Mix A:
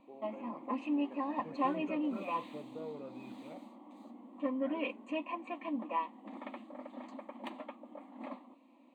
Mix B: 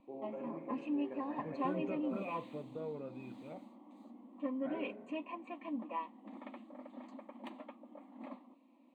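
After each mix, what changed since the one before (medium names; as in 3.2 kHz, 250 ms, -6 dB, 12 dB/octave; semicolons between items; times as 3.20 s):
first voice: send +8.0 dB; background -6.0 dB; master: add bass shelf 230 Hz +8 dB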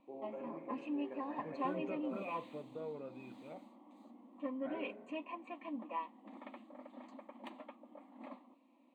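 master: add bass shelf 230 Hz -8 dB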